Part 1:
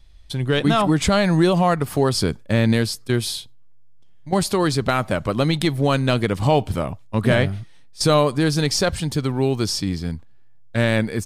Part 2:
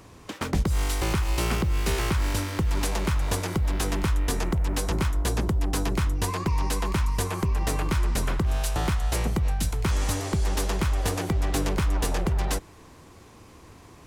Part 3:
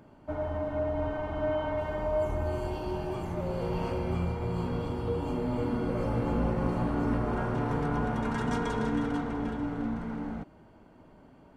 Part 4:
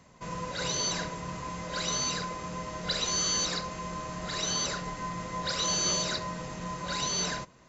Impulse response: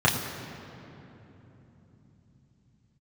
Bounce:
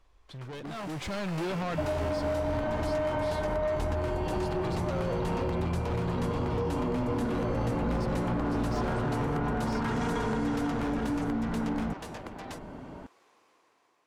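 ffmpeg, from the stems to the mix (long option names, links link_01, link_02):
-filter_complex "[0:a]highshelf=frequency=9200:gain=-9,volume=24.5dB,asoftclip=hard,volume=-24.5dB,volume=-15dB[link_01];[1:a]highpass=530,volume=-17.5dB[link_02];[2:a]adelay=1500,volume=2dB[link_03];[3:a]adynamicsmooth=sensitivity=2:basefreq=700,adelay=1750,volume=-14dB[link_04];[link_02][link_04]amix=inputs=2:normalize=0,acompressor=threshold=-48dB:ratio=6,volume=0dB[link_05];[link_01][link_03]amix=inputs=2:normalize=0,asoftclip=type=tanh:threshold=-24.5dB,acompressor=threshold=-38dB:ratio=6,volume=0dB[link_06];[link_05][link_06]amix=inputs=2:normalize=0,dynaudnorm=framelen=280:gausssize=7:maxgain=10dB,highshelf=frequency=6400:gain=-11.5"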